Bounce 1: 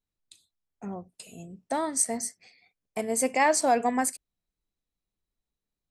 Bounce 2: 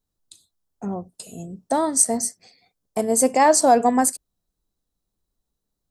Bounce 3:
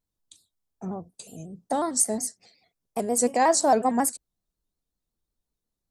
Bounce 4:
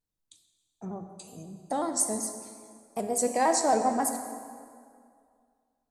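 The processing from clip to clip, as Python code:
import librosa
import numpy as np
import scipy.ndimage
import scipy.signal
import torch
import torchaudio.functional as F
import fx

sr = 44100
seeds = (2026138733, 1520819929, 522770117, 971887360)

y1 = fx.peak_eq(x, sr, hz=2300.0, db=-12.0, octaves=0.95)
y1 = y1 * librosa.db_to_amplitude(8.5)
y2 = fx.vibrato_shape(y1, sr, shape='square', rate_hz=5.5, depth_cents=100.0)
y2 = y2 * librosa.db_to_amplitude(-5.0)
y3 = fx.rev_plate(y2, sr, seeds[0], rt60_s=2.2, hf_ratio=0.7, predelay_ms=0, drr_db=5.5)
y3 = y3 * librosa.db_to_amplitude(-4.5)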